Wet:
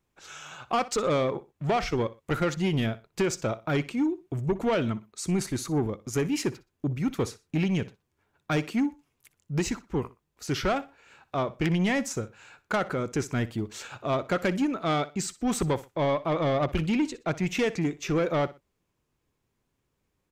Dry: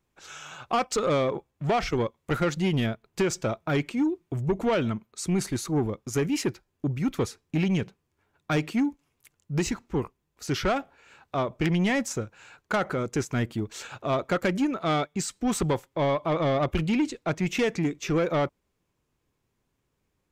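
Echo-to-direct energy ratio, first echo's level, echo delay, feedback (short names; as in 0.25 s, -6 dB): -17.5 dB, -18.0 dB, 61 ms, 28%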